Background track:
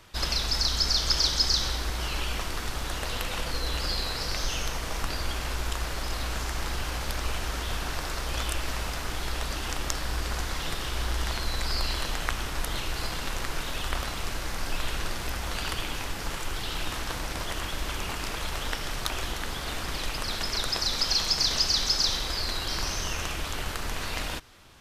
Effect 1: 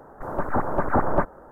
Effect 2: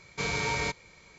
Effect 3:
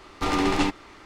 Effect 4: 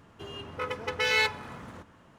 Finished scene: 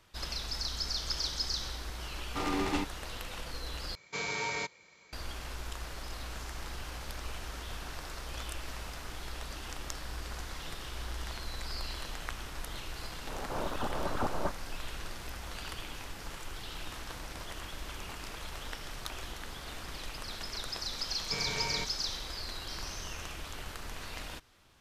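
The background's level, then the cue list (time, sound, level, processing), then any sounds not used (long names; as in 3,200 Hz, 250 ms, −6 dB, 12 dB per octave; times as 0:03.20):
background track −10 dB
0:02.14: mix in 3 −9 dB
0:03.95: overwrite with 2 −4 dB + high-pass filter 300 Hz 6 dB per octave
0:13.27: mix in 1 −12.5 dB + background raised ahead of every attack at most 32 dB per second
0:21.13: mix in 2 −7 dB
not used: 4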